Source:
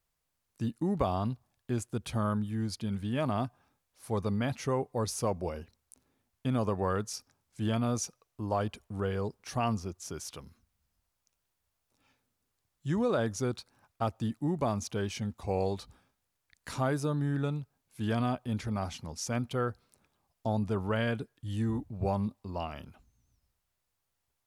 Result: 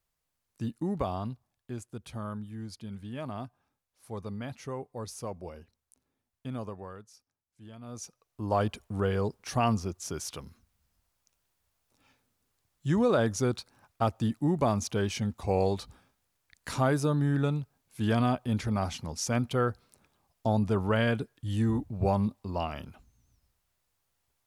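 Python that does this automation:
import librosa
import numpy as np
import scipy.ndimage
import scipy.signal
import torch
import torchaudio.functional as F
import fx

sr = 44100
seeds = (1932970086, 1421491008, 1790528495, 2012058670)

y = fx.gain(x, sr, db=fx.line((0.86, -1.0), (1.83, -7.0), (6.6, -7.0), (7.1, -18.0), (7.77, -18.0), (8.05, -6.0), (8.58, 4.0)))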